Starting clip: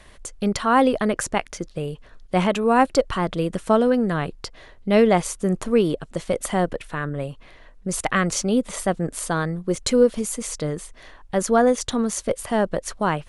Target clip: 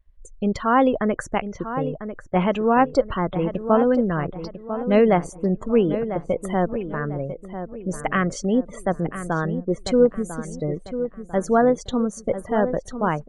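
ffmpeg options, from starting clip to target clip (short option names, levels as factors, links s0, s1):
-filter_complex "[0:a]afftdn=nr=32:nf=-32,lowpass=f=2600:p=1,asplit=2[s0][s1];[s1]adelay=997,lowpass=f=2000:p=1,volume=0.316,asplit=2[s2][s3];[s3]adelay=997,lowpass=f=2000:p=1,volume=0.38,asplit=2[s4][s5];[s5]adelay=997,lowpass=f=2000:p=1,volume=0.38,asplit=2[s6][s7];[s7]adelay=997,lowpass=f=2000:p=1,volume=0.38[s8];[s2][s4][s6][s8]amix=inputs=4:normalize=0[s9];[s0][s9]amix=inputs=2:normalize=0"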